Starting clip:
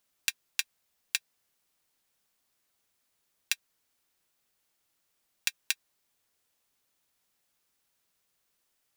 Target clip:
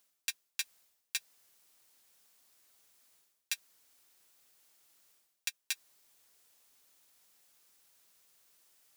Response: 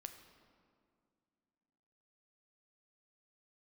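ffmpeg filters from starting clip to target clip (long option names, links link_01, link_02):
-af "bass=frequency=250:gain=-5,treble=frequency=4000:gain=4,areverse,acompressor=threshold=-41dB:ratio=6,areverse,volume=6dB"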